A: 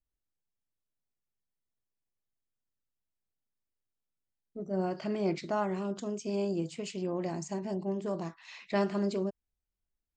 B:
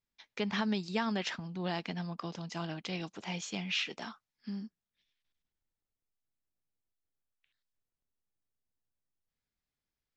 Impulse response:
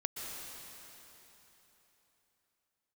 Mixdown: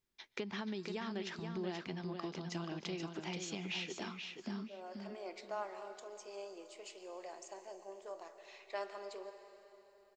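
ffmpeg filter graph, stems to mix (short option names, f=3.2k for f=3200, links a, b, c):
-filter_complex "[0:a]highpass=f=470:w=0.5412,highpass=f=470:w=1.3066,volume=-12dB,asplit=2[a][b];[b]volume=-6dB[c];[1:a]equalizer=f=370:t=o:w=0.28:g=11.5,acompressor=threshold=-43dB:ratio=4,volume=1.5dB,asplit=4[d][e][f][g];[e]volume=-18dB[h];[f]volume=-5dB[i];[g]apad=whole_len=448139[j];[a][j]sidechaincompress=threshold=-49dB:ratio=8:attack=16:release=1010[k];[2:a]atrim=start_sample=2205[l];[c][h]amix=inputs=2:normalize=0[m];[m][l]afir=irnorm=-1:irlink=0[n];[i]aecho=0:1:480|960|1440:1|0.17|0.0289[o];[k][d][n][o]amix=inputs=4:normalize=0"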